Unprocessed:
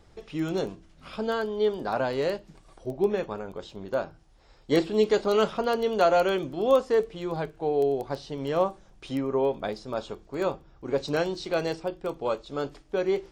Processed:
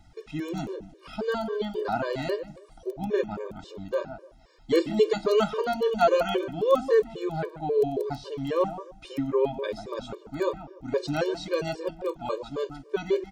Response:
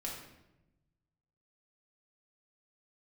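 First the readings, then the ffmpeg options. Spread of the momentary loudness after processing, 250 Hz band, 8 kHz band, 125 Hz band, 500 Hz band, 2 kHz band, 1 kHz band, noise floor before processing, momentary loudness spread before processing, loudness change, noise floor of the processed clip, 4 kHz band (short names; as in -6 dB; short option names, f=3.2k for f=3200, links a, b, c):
15 LU, -0.5 dB, n/a, 0.0 dB, -0.5 dB, -1.0 dB, -0.5 dB, -57 dBFS, 13 LU, -0.5 dB, -54 dBFS, -1.0 dB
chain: -filter_complex "[0:a]bandreject=f=570:w=16,asplit=2[a][b];[b]adelay=147,lowpass=f=1.2k:p=1,volume=-9dB,asplit=2[c][d];[d]adelay=147,lowpass=f=1.2k:p=1,volume=0.24,asplit=2[e][f];[f]adelay=147,lowpass=f=1.2k:p=1,volume=0.24[g];[a][c][e][g]amix=inputs=4:normalize=0,afftfilt=real='re*gt(sin(2*PI*3.7*pts/sr)*(1-2*mod(floor(b*sr/1024/310),2)),0)':imag='im*gt(sin(2*PI*3.7*pts/sr)*(1-2*mod(floor(b*sr/1024/310),2)),0)':win_size=1024:overlap=0.75,volume=2.5dB"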